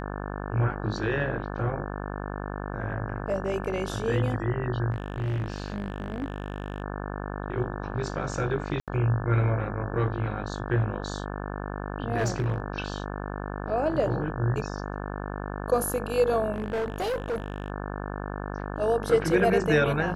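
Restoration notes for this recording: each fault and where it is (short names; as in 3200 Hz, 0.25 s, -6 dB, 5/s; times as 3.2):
buzz 50 Hz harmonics 35 -34 dBFS
4.91–6.82 clipped -25.5 dBFS
8.8–8.88 gap 77 ms
12.17–12.6 clipped -21 dBFS
16.54–17.7 clipped -25.5 dBFS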